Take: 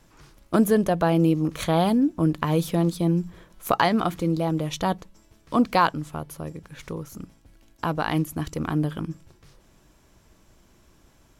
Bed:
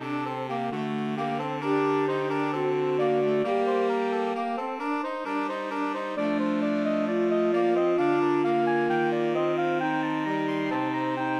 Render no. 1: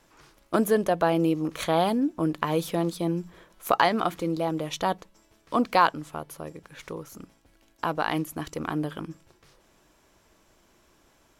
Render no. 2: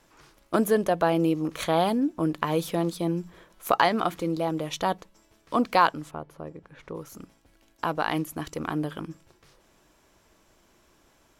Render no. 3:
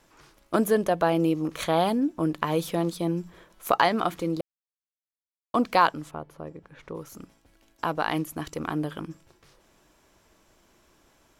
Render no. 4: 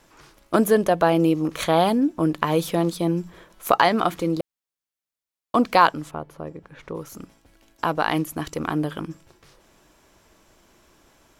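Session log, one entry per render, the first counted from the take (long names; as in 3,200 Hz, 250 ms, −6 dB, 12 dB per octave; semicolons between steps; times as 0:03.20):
bass and treble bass −10 dB, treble −2 dB
0:06.11–0:06.95: low-pass filter 1,200 Hz 6 dB per octave
0:04.41–0:05.54: silence
level +4.5 dB; brickwall limiter −2 dBFS, peak gain reduction 1.5 dB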